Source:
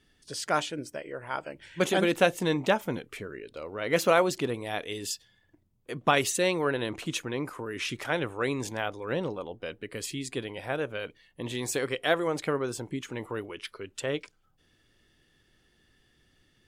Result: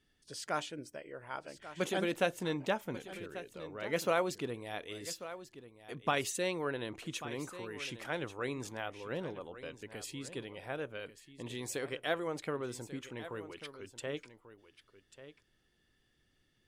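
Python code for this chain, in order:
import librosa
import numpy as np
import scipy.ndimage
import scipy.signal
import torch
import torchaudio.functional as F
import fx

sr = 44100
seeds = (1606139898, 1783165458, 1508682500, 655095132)

y = x + 10.0 ** (-14.0 / 20.0) * np.pad(x, (int(1140 * sr / 1000.0), 0))[:len(x)]
y = y * 10.0 ** (-8.5 / 20.0)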